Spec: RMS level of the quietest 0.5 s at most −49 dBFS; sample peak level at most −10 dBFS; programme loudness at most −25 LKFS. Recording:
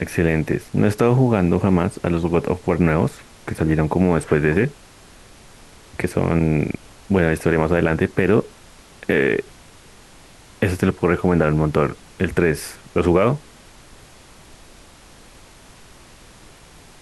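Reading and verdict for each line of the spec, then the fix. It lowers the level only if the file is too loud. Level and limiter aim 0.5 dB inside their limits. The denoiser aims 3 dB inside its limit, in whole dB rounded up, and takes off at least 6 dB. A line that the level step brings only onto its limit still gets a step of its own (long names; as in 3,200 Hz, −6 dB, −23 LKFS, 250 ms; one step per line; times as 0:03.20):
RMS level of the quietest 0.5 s −46 dBFS: out of spec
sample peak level −4.0 dBFS: out of spec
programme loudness −19.5 LKFS: out of spec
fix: level −6 dB
brickwall limiter −10.5 dBFS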